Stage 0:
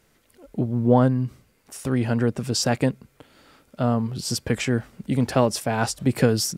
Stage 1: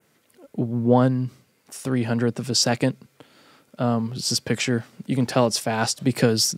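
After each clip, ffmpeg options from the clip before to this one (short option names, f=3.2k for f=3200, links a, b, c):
-af "highpass=f=110:w=0.5412,highpass=f=110:w=1.3066,adynamicequalizer=threshold=0.00794:dfrequency=4700:dqfactor=0.89:tfrequency=4700:tqfactor=0.89:attack=5:release=100:ratio=0.375:range=3:mode=boostabove:tftype=bell"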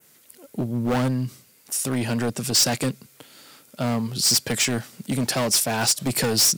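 -af "volume=18dB,asoftclip=hard,volume=-18dB,crystalizer=i=3.5:c=0,asoftclip=type=tanh:threshold=-14dB"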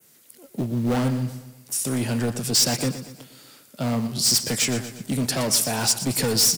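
-filter_complex "[0:a]acrossover=split=180|590|3200[a][b][c][d];[b]acrusher=bits=5:mode=log:mix=0:aa=0.000001[e];[c]flanger=delay=18.5:depth=7.1:speed=2.4[f];[a][e][f][d]amix=inputs=4:normalize=0,aecho=1:1:119|238|357|476|595:0.237|0.114|0.0546|0.0262|0.0126"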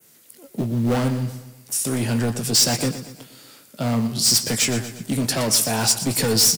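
-filter_complex "[0:a]asplit=2[a][b];[b]adelay=18,volume=-11dB[c];[a][c]amix=inputs=2:normalize=0,volume=2dB"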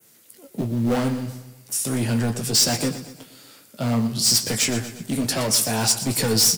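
-af "flanger=delay=8.5:depth=4:regen=-53:speed=0.5:shape=triangular,volume=3dB"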